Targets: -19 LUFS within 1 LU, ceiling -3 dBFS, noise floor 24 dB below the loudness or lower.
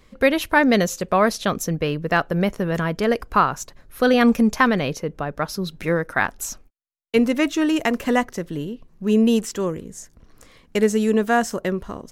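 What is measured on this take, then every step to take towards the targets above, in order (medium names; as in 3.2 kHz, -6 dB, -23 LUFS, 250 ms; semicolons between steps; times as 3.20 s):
loudness -21.0 LUFS; peak level -3.5 dBFS; loudness target -19.0 LUFS
-> trim +2 dB; peak limiter -3 dBFS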